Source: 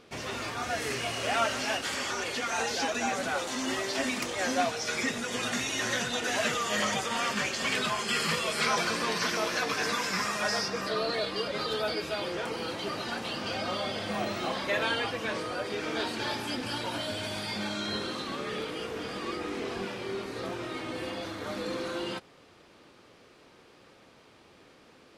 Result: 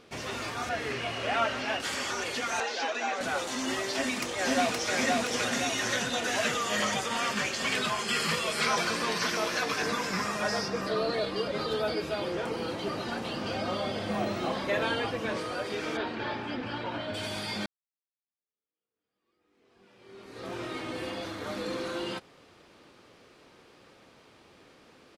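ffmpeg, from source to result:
-filter_complex "[0:a]asettb=1/sr,asplit=3[a][b][c];[a]atrim=end=0.694[d];[b]atrim=start=0.69:end=1.8,asetpts=PTS-STARTPTS,afade=t=in:d=0.004:c=qsin,afade=t=out:st=1.106:d=0.004:c=qsin,acrossover=split=4200[e][f];[f]acompressor=threshold=-54dB:ratio=4:attack=1:release=60[g];[e][g]amix=inputs=2:normalize=0[h];[c]atrim=start=1.796[i];[d][h]acrossfade=d=0.004:c1=hsin:c2=qsin[j];[j][i]acrossfade=d=0.004:c1=qsin:c2=hsin,asettb=1/sr,asplit=3[k][l][m];[k]atrim=end=2.604[n];[l]atrim=start=2.6:end=3.21,asetpts=PTS-STARTPTS,afade=t=in:d=0.004:c=qsin,afade=t=out:st=0.606:d=0.004:c=qsin,highpass=390,lowpass=4.5k[o];[m]atrim=start=3.206[p];[n][o]acrossfade=d=0.004:c1=hsin:c2=qsin[q];[q][p]acrossfade=d=0.004:c1=qsin:c2=hsin,asplit=2[r][s];[s]afade=t=in:st=3.93:d=0.01,afade=t=out:st=4.92:d=0.01,aecho=0:1:520|1040|1560|2080|2600|3120|3640|4160:0.841395|0.462767|0.254522|0.139987|0.0769929|0.0423461|0.0232904|0.0128097[t];[r][t]amix=inputs=2:normalize=0,asettb=1/sr,asplit=3[u][v][w];[u]atrim=end=9.824[x];[v]atrim=start=9.82:end=15.37,asetpts=PTS-STARTPTS,afade=t=in:d=0.004:c=qsin,afade=t=out:st=5.546:d=0.004:c=qsin,tiltshelf=f=970:g=3.5[y];[w]atrim=start=15.366[z];[x][y]acrossfade=d=0.004:c1=hsin:c2=qsin[aa];[aa][z]acrossfade=d=0.004:c1=qsin:c2=hsin,asplit=3[ab][ac][ad];[ab]afade=t=out:st=15.96:d=0.02[ae];[ac]lowpass=2.5k,afade=t=in:st=15.96:d=0.02,afade=t=out:st=17.13:d=0.02[af];[ad]afade=t=in:st=17.13:d=0.02[ag];[ae][af][ag]amix=inputs=3:normalize=0,asplit=2[ah][ai];[ah]atrim=end=17.66,asetpts=PTS-STARTPTS,afade=t=out:st=17.656:d=0.004:c=hsin[aj];[ai]atrim=start=17.66,asetpts=PTS-STARTPTS,afade=t=in:d=2.91:c=exp[ak];[aj][ak]concat=n=2:v=0:a=1"

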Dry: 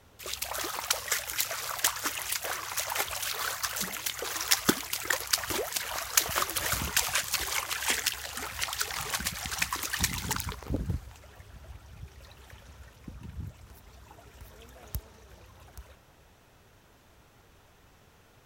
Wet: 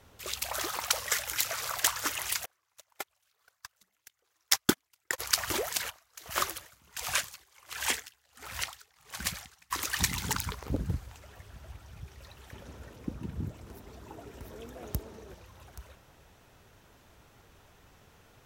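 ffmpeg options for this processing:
-filter_complex "[0:a]asplit=3[a][b][c];[a]afade=t=out:st=2.44:d=0.02[d];[b]agate=range=-41dB:threshold=-27dB:ratio=16:release=100:detection=peak,afade=t=in:st=2.44:d=0.02,afade=t=out:st=5.18:d=0.02[e];[c]afade=t=in:st=5.18:d=0.02[f];[d][e][f]amix=inputs=3:normalize=0,asplit=3[g][h][i];[g]afade=t=out:st=5.89:d=0.02[j];[h]aeval=exprs='val(0)*pow(10,-32*(0.5-0.5*cos(2*PI*1.4*n/s))/20)':c=same,afade=t=in:st=5.89:d=0.02,afade=t=out:st=9.7:d=0.02[k];[i]afade=t=in:st=9.7:d=0.02[l];[j][k][l]amix=inputs=3:normalize=0,asettb=1/sr,asplit=3[m][n][o];[m]atrim=end=12.534[p];[n]atrim=start=12.53:end=15.34,asetpts=PTS-STARTPTS,afade=t=in:d=0.004:c=qsin,afade=t=out:st=2.806:d=0.004:c=qsin,equalizer=f=320:w=0.68:g=12[q];[o]atrim=start=15.336[r];[p][q]acrossfade=d=0.004:c1=hsin:c2=qsin[s];[s][r]acrossfade=d=0.004:c1=qsin:c2=hsin"

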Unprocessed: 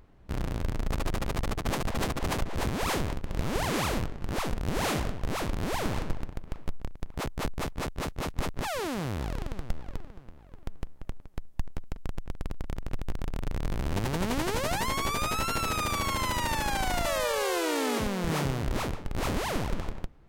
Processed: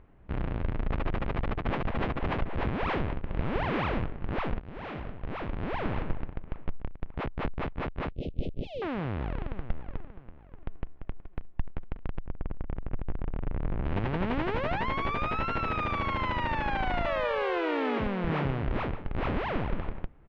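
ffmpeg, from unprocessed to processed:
-filter_complex "[0:a]asettb=1/sr,asplit=3[a][b][c];[a]atrim=end=8.104[d];[b]atrim=start=8.1:end=8.82,asetpts=PTS-STARTPTS,afade=t=in:d=0.004:c=qsin,afade=t=out:st=0.716:d=0.004:c=qsin,asuperstop=centerf=1300:order=8:qfactor=0.55[e];[c]atrim=start=8.816[f];[d][e]acrossfade=d=0.004:c1=hsin:c2=qsin[g];[g][f]acrossfade=d=0.004:c1=qsin:c2=hsin,asplit=2[h][i];[i]afade=t=in:st=10.02:d=0.01,afade=t=out:st=11.08:d=0.01,aecho=0:1:580|1160|1740|2320|2900|3480|4060|4640|5220|5800|6380|6960:0.141254|0.113003|0.0904024|0.0723219|0.0578575|0.046286|0.0370288|0.0296231|0.0236984|0.0189588|0.015167|0.0121336[j];[h][j]amix=inputs=2:normalize=0,asettb=1/sr,asplit=3[k][l][m];[k]atrim=end=12.214[n];[l]atrim=start=12.21:end=13.85,asetpts=PTS-STARTPTS,afade=t=in:d=0.004:c=qsin,afade=t=out:st=1.636:d=0.004:c=qsin,lowpass=f=1.4k:p=1[o];[m]atrim=start=13.846[p];[n][o]acrossfade=d=0.004:c1=hsin:c2=qsin[q];[q][p]acrossfade=d=0.004:c1=qsin:c2=hsin,asplit=2[r][s];[r]atrim=end=4.6,asetpts=PTS-STARTPTS,afade=t=out:st=4.596:d=0.004:c=hsin:silence=0.16788[t];[s]atrim=start=4.6,asetpts=PTS-STARTPTS,afade=t=in:d=1.41:silence=0.16788[u];[t][u]concat=n=2:v=0:a=1,lowpass=f=2.8k:w=0.5412,lowpass=f=2.8k:w=1.3066"

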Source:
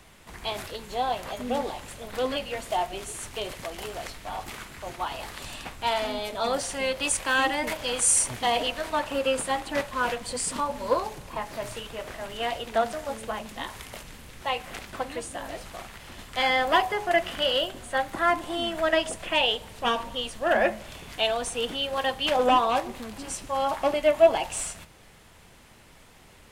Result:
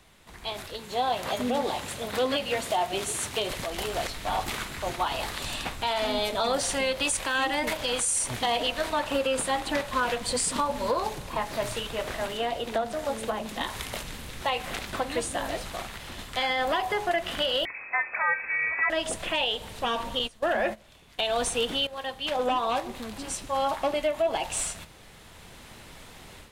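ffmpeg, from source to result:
-filter_complex "[0:a]asettb=1/sr,asplit=3[a][b][c];[a]atrim=end=0.794[d];[b]atrim=start=0.79:end=3.47,asetpts=PTS-STARTPTS,afade=t=in:d=0.004:c=qsin,afade=t=out:st=2.676:d=0.004:c=qsin,highpass=82[e];[c]atrim=start=3.466[f];[d][e]acrossfade=d=0.004:c1=hsin:c2=qsin[g];[g][f]acrossfade=d=0.004:c1=qsin:c2=hsin,asettb=1/sr,asplit=3[h][i][j];[h]atrim=end=12.264[k];[i]atrim=start=12.26:end=13.61,asetpts=PTS-STARTPTS,afade=t=in:d=0.004:c=qsin,afade=t=out:st=1.346:d=0.004:c=qsin,acrossover=split=160|780[l][m][n];[l]acompressor=threshold=-53dB:ratio=4[o];[m]acompressor=threshold=-34dB:ratio=4[p];[n]acompressor=threshold=-42dB:ratio=4[q];[o][p][q]amix=inputs=3:normalize=0[r];[j]atrim=start=13.606[s];[k][r]acrossfade=d=0.004:c1=hsin:c2=qsin[t];[t][s]acrossfade=d=0.004:c1=qsin:c2=hsin,asettb=1/sr,asplit=3[u][v][w];[u]atrim=end=17.654[x];[v]atrim=start=17.65:end=18.9,asetpts=PTS-STARTPTS,afade=t=in:d=0.004:c=qsin,afade=t=out:st=1.246:d=0.004:c=qsin,lowpass=f=2.2k:t=q:w=0.5098,lowpass=f=2.2k:t=q:w=0.6013,lowpass=f=2.2k:t=q:w=0.9,lowpass=f=2.2k:t=q:w=2.563,afreqshift=-2600[y];[w]atrim=start=18.896[z];[x][y]acrossfade=d=0.004:c1=hsin:c2=qsin[aa];[aa][z]acrossfade=d=0.004:c1=qsin:c2=hsin,asettb=1/sr,asplit=3[ab][ac][ad];[ab]atrim=end=20.194[ae];[ac]atrim=start=20.19:end=21.19,asetpts=PTS-STARTPTS,afade=t=in:d=0.004:c=qsin,afade=t=out:st=0.996:d=0.004:c=qsin,agate=range=-17dB:threshold=-34dB:ratio=16:release=100:detection=peak[af];[ad]atrim=start=21.186[ag];[ae][af]acrossfade=d=0.004:c1=hsin:c2=qsin[ah];[ah][ag]acrossfade=d=0.004:c1=qsin:c2=hsin,asplit=2[ai][aj];[ai]atrim=end=21.87,asetpts=PTS-STARTPTS,afade=t=out:st=21.866:d=0.004:c=hsin:silence=0.211349[ak];[aj]atrim=start=21.87,asetpts=PTS-STARTPTS,afade=t=in:d=2.65:silence=0.211349[al];[ak][al]concat=n=2:v=0:a=1,equalizer=f=3.8k:t=o:w=0.35:g=4,dynaudnorm=f=660:g=3:m=11.5dB,alimiter=limit=-12dB:level=0:latency=1:release=146,volume=-5dB"

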